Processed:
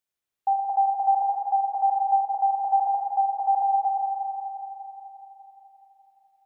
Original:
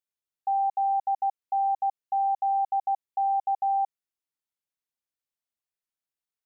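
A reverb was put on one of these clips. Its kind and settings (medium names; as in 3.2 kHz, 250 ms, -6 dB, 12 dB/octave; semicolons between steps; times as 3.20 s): spring tank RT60 3.8 s, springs 42/59 ms, chirp 55 ms, DRR -1.5 dB; trim +4 dB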